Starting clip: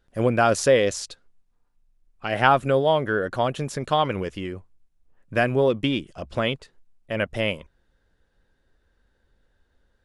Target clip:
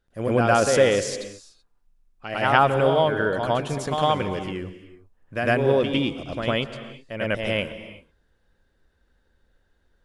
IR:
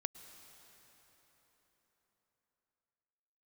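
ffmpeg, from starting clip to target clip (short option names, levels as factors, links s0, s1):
-filter_complex "[0:a]asplit=2[s0][s1];[1:a]atrim=start_sample=2205,afade=t=out:st=0.44:d=0.01,atrim=end_sample=19845,adelay=105[s2];[s1][s2]afir=irnorm=-1:irlink=0,volume=2.37[s3];[s0][s3]amix=inputs=2:normalize=0,volume=0.501"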